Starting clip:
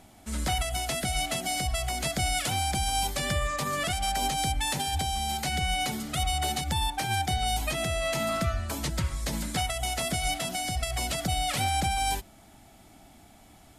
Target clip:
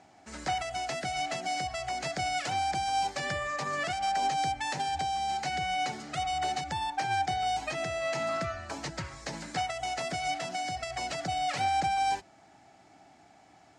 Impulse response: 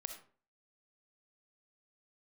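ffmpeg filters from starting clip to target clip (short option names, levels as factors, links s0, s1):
-af "highpass=150,equalizer=f=220:t=q:w=4:g=-8,equalizer=f=780:t=q:w=4:g=5,equalizer=f=1700:t=q:w=4:g=4,equalizer=f=3400:t=q:w=4:g=-7,lowpass=f=6700:w=0.5412,lowpass=f=6700:w=1.3066,volume=0.708"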